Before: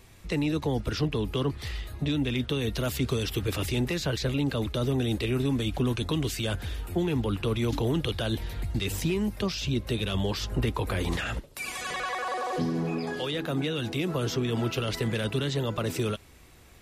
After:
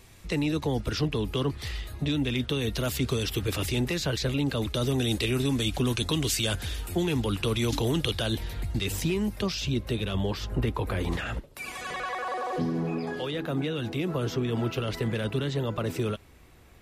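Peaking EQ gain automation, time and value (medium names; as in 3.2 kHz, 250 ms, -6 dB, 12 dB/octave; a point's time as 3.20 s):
peaking EQ 7.6 kHz 2.6 oct
4.51 s +2.5 dB
4.95 s +9 dB
7.96 s +9 dB
8.54 s +1.5 dB
9.59 s +1.5 dB
10.16 s -6 dB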